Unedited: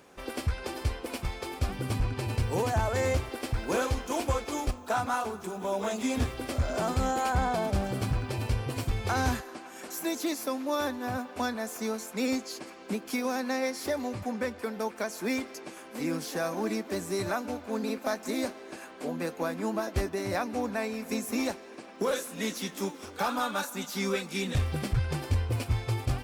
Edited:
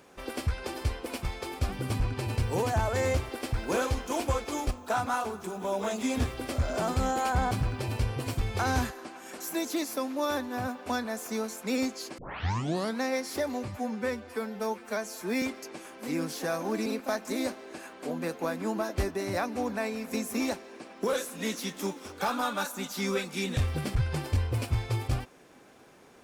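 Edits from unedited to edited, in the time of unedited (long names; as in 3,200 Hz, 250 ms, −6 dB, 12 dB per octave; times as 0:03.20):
0:07.51–0:08.01: remove
0:12.68: tape start 0.83 s
0:14.18–0:15.34: time-stretch 1.5×
0:16.78–0:17.84: remove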